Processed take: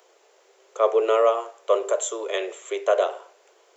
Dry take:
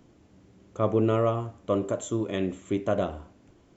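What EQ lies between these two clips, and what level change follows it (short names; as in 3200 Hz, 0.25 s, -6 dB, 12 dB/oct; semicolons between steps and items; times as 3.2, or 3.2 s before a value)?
steep high-pass 400 Hz 72 dB/oct; high shelf 5700 Hz +5.5 dB; +7.0 dB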